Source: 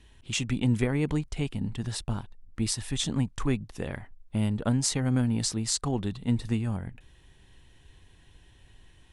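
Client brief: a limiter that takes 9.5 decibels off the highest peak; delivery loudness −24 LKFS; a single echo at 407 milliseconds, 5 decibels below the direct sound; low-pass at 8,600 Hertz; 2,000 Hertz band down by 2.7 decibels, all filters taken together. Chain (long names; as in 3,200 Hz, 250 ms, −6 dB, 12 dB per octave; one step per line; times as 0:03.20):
low-pass filter 8,600 Hz
parametric band 2,000 Hz −3.5 dB
brickwall limiter −20 dBFS
single-tap delay 407 ms −5 dB
level +7 dB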